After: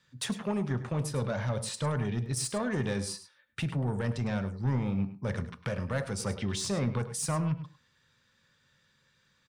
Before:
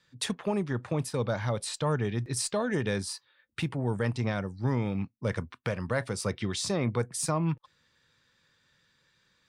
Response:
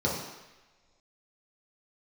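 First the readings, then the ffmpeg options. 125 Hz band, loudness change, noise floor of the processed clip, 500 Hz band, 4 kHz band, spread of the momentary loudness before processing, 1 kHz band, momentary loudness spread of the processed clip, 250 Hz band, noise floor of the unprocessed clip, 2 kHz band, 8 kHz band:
0.0 dB, −1.0 dB, −70 dBFS, −3.5 dB, −2.0 dB, 6 LU, −2.5 dB, 6 LU, −0.5 dB, −71 dBFS, −3.0 dB, −1.0 dB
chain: -filter_complex "[0:a]asoftclip=type=tanh:threshold=-24dB,aecho=1:1:103:0.2,asplit=2[link_01][link_02];[1:a]atrim=start_sample=2205,atrim=end_sample=6174[link_03];[link_02][link_03]afir=irnorm=-1:irlink=0,volume=-22dB[link_04];[link_01][link_04]amix=inputs=2:normalize=0"

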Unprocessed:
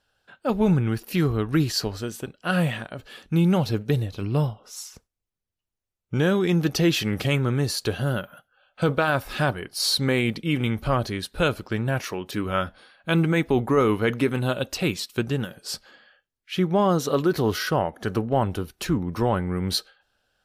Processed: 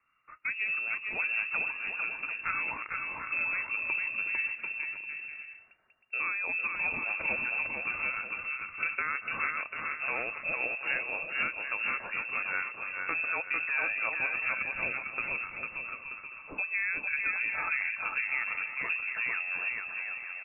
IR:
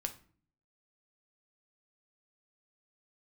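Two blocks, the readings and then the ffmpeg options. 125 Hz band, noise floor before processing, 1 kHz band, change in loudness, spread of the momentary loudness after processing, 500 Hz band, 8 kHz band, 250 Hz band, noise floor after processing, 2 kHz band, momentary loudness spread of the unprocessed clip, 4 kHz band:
−34.0 dB, −85 dBFS, −9.5 dB, −7.0 dB, 6 LU, −21.5 dB, below −40 dB, −29.0 dB, −51 dBFS, +3.0 dB, 10 LU, below −20 dB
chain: -af "equalizer=frequency=230:width=0.45:gain=-6,acompressor=threshold=-33dB:ratio=2.5,aecho=1:1:450|742.5|932.6|1056|1137:0.631|0.398|0.251|0.158|0.1,lowpass=frequency=2400:width_type=q:width=0.5098,lowpass=frequency=2400:width_type=q:width=0.6013,lowpass=frequency=2400:width_type=q:width=0.9,lowpass=frequency=2400:width_type=q:width=2.563,afreqshift=-2800"

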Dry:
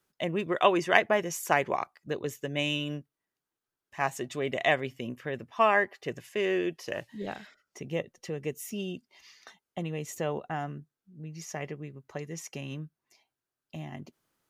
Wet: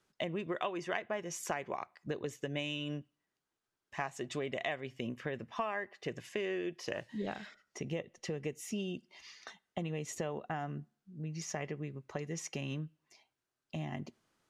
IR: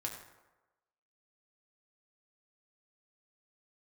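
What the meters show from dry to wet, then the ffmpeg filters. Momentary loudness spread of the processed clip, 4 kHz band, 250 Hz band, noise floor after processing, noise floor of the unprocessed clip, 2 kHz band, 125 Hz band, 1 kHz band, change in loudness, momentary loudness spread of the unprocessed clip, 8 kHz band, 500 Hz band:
9 LU, −7.5 dB, −5.0 dB, below −85 dBFS, below −85 dBFS, −10.5 dB, −3.5 dB, −11.0 dB, −9.0 dB, 19 LU, −3.5 dB, −8.5 dB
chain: -filter_complex "[0:a]acompressor=threshold=-36dB:ratio=6,lowpass=8000,asplit=2[link_01][link_02];[1:a]atrim=start_sample=2205,asetrate=88200,aresample=44100[link_03];[link_02][link_03]afir=irnorm=-1:irlink=0,volume=-12.5dB[link_04];[link_01][link_04]amix=inputs=2:normalize=0,volume=1dB"

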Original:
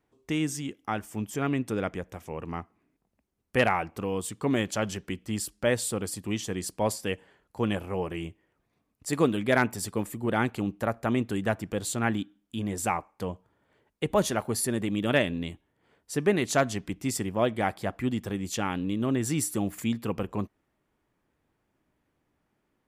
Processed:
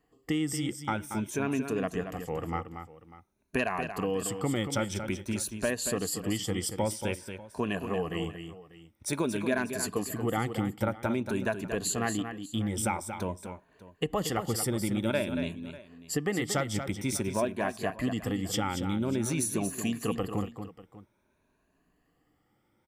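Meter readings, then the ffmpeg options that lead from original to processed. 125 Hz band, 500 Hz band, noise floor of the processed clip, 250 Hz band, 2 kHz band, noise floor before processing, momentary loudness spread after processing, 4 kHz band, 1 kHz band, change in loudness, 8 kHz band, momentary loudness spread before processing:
−1.5 dB, −3.0 dB, −72 dBFS, −2.0 dB, −3.5 dB, −77 dBFS, 7 LU, −0.5 dB, −3.0 dB, −2.0 dB, +0.5 dB, 11 LU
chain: -af "afftfilt=real='re*pow(10,12/40*sin(2*PI*(1.5*log(max(b,1)*sr/1024/100)/log(2)-(0.5)*(pts-256)/sr)))':imag='im*pow(10,12/40*sin(2*PI*(1.5*log(max(b,1)*sr/1024/100)/log(2)-(0.5)*(pts-256)/sr)))':win_size=1024:overlap=0.75,acompressor=threshold=-28dB:ratio=4,aecho=1:1:231|593:0.376|0.119,volume=1dB"

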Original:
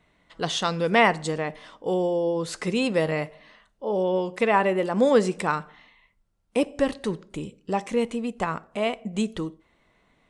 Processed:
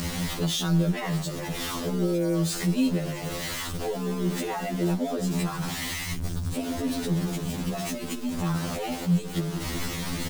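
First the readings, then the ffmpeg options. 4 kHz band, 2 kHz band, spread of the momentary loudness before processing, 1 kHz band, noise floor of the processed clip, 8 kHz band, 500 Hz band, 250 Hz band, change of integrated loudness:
+1.0 dB, −6.5 dB, 13 LU, −8.5 dB, −34 dBFS, +6.5 dB, −8.0 dB, +1.0 dB, −3.0 dB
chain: -filter_complex "[0:a]aeval=exprs='val(0)+0.5*0.075*sgn(val(0))':channel_layout=same,acrossover=split=360|2500[link_01][link_02][link_03];[link_01]acontrast=77[link_04];[link_02]aeval=exprs='val(0)*sin(2*PI*110*n/s)':channel_layout=same[link_05];[link_03]aecho=1:1:6.6:0.69[link_06];[link_04][link_05][link_06]amix=inputs=3:normalize=0,acompressor=mode=upward:threshold=-21dB:ratio=2.5,alimiter=limit=-15.5dB:level=0:latency=1:release=58,afftfilt=real='re*2*eq(mod(b,4),0)':imag='im*2*eq(mod(b,4),0)':win_size=2048:overlap=0.75,volume=-2dB"

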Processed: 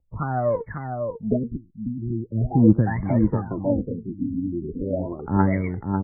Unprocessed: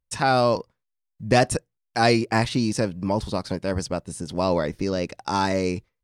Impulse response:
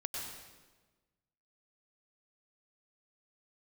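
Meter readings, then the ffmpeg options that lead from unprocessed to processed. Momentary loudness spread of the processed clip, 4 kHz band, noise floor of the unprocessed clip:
12 LU, below −40 dB, −80 dBFS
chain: -filter_complex "[0:a]acrossover=split=330|1900[link_01][link_02][link_03];[link_02]acompressor=threshold=-32dB:ratio=6[link_04];[link_01][link_04][link_03]amix=inputs=3:normalize=0,aphaser=in_gain=1:out_gain=1:delay=4.7:decay=0.77:speed=0.37:type=triangular,asplit=2[link_05][link_06];[link_06]adelay=547,lowpass=frequency=1500:poles=1,volume=-5dB,asplit=2[link_07][link_08];[link_08]adelay=547,lowpass=frequency=1500:poles=1,volume=0.31,asplit=2[link_09][link_10];[link_10]adelay=547,lowpass=frequency=1500:poles=1,volume=0.31,asplit=2[link_11][link_12];[link_12]adelay=547,lowpass=frequency=1500:poles=1,volume=0.31[link_13];[link_05][link_07][link_09][link_11][link_13]amix=inputs=5:normalize=0,afftfilt=real='re*lt(b*sr/1024,320*pow(2300/320,0.5+0.5*sin(2*PI*0.4*pts/sr)))':imag='im*lt(b*sr/1024,320*pow(2300/320,0.5+0.5*sin(2*PI*0.4*pts/sr)))':win_size=1024:overlap=0.75"

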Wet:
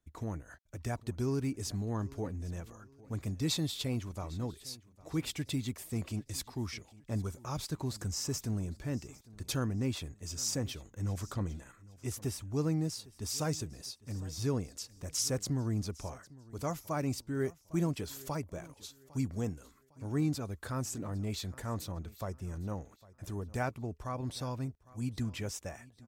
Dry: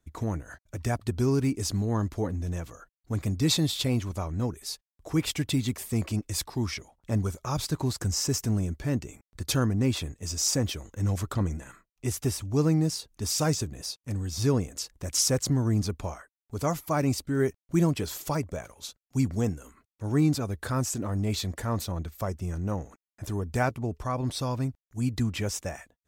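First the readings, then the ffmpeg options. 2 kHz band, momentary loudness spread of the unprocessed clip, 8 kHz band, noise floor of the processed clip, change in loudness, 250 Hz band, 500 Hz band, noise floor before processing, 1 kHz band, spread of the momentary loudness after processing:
−8.0 dB, 11 LU, −8.0 dB, −64 dBFS, −8.0 dB, −8.0 dB, −8.0 dB, below −85 dBFS, −8.0 dB, 11 LU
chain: -af "aecho=1:1:805|1610|2415:0.0891|0.0321|0.0116,volume=-8dB"

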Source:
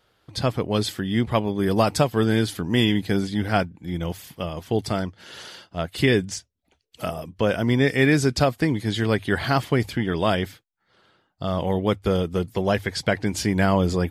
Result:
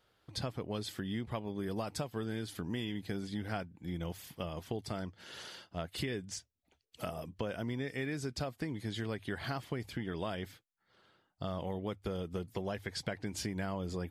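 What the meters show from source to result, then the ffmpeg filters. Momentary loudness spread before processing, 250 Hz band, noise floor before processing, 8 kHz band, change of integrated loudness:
12 LU, −16.0 dB, −70 dBFS, −12.5 dB, −16.0 dB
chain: -af "acompressor=threshold=-27dB:ratio=6,volume=-7.5dB"

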